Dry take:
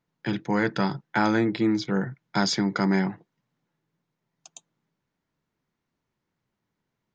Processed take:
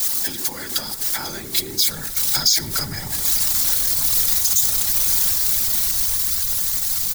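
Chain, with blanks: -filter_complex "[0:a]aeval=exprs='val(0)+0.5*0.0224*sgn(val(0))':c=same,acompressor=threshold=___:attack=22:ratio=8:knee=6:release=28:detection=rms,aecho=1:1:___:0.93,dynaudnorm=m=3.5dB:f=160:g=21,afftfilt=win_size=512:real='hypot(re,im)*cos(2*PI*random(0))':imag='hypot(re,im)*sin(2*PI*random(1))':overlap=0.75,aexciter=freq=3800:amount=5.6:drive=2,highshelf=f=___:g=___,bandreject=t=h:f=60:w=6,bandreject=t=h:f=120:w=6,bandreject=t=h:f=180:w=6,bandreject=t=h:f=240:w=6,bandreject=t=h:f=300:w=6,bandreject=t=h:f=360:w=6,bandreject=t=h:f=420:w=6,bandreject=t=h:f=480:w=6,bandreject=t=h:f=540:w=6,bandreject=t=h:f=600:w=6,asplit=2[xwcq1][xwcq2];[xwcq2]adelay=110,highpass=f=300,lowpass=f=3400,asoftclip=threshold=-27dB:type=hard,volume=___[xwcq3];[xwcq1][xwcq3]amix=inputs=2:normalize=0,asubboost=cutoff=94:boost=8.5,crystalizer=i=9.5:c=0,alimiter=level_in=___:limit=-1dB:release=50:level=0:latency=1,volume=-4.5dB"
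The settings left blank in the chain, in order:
-34dB, 3.6, 3500, -8.5, -19dB, 5.5dB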